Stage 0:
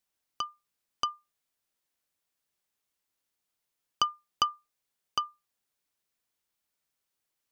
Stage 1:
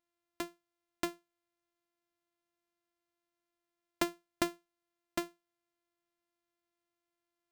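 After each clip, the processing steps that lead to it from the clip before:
samples sorted by size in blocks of 128 samples
level −5 dB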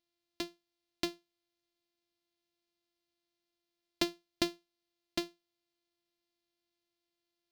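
drawn EQ curve 330 Hz 0 dB, 1,300 Hz −8 dB, 4,400 Hz +8 dB, 7,800 Hz −5 dB
level +1 dB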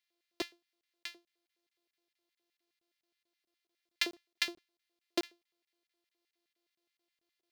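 auto-filter high-pass square 4.8 Hz 420–1,900 Hz
regular buffer underruns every 0.22 s, samples 1,024, zero, from 0:00.81

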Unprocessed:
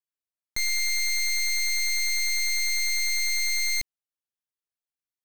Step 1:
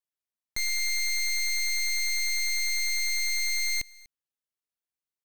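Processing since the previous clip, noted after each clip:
single-tap delay 245 ms −23 dB
level −2.5 dB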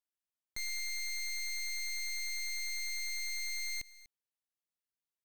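brickwall limiter −31.5 dBFS, peak gain reduction 5 dB
level −5.5 dB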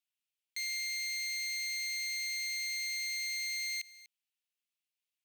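high-pass with resonance 2,600 Hz, resonance Q 2.7

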